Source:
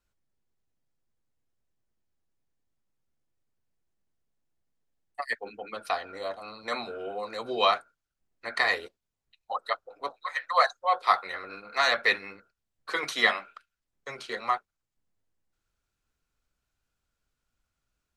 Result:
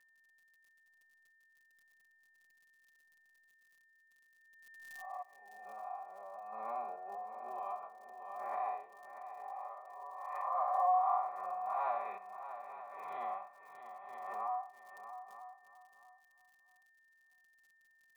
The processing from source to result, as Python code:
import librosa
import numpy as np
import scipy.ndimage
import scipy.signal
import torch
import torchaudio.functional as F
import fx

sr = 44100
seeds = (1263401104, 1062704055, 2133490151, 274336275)

p1 = fx.spec_blur(x, sr, span_ms=180.0)
p2 = fx.tremolo_random(p1, sr, seeds[0], hz=2.3, depth_pct=90)
p3 = fx.formant_cascade(p2, sr, vowel='a')
p4 = p3 + 10.0 ** (-14.0 / 20.0) * np.pad(p3, (int(925 * sr / 1000.0), 0))[:len(p3)]
p5 = fx.dmg_crackle(p4, sr, seeds[1], per_s=44.0, level_db=-71.0)
p6 = fx.high_shelf(p5, sr, hz=3300.0, db=11.0)
p7 = p6 + 0.94 * np.pad(p6, (int(5.1 * sr / 1000.0), 0))[:len(p6)]
p8 = p7 + fx.echo_feedback(p7, sr, ms=636, feedback_pct=24, wet_db=-11.0, dry=0)
p9 = p8 + 10.0 ** (-72.0 / 20.0) * np.sin(2.0 * np.pi * 1800.0 * np.arange(len(p8)) / sr)
p10 = fx.pre_swell(p9, sr, db_per_s=33.0)
y = p10 * 10.0 ** (5.0 / 20.0)